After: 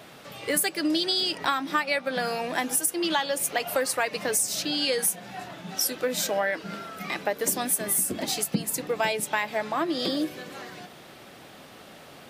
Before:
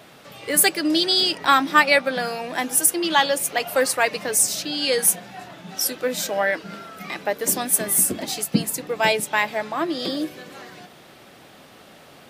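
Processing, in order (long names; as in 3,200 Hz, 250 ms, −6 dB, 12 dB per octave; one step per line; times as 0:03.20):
downward compressor 6 to 1, threshold −22 dBFS, peak gain reduction 12.5 dB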